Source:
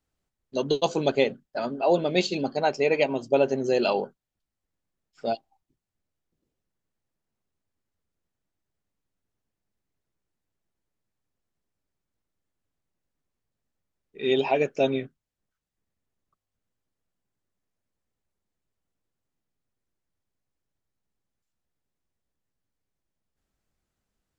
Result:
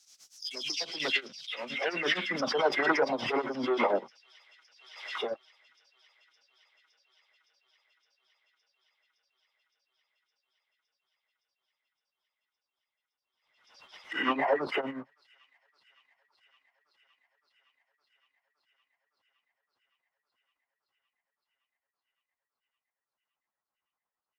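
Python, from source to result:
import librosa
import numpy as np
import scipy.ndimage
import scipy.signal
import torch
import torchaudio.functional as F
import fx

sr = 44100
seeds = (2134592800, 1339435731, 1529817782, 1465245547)

y = fx.spec_delay(x, sr, highs='early', ms=169)
y = fx.high_shelf(y, sr, hz=6600.0, db=6.0)
y = fx.leveller(y, sr, passes=2)
y = y * (1.0 - 0.92 / 2.0 + 0.92 / 2.0 * np.cos(2.0 * np.pi * 8.6 * (np.arange(len(y)) / sr)))
y = fx.formant_shift(y, sr, semitones=-4)
y = fx.filter_sweep_bandpass(y, sr, from_hz=5700.0, to_hz=1000.0, start_s=0.73, end_s=2.64, q=2.9)
y = fx.echo_wet_highpass(y, sr, ms=564, feedback_pct=80, hz=3600.0, wet_db=-18)
y = fx.pre_swell(y, sr, db_per_s=64.0)
y = y * 10.0 ** (7.5 / 20.0)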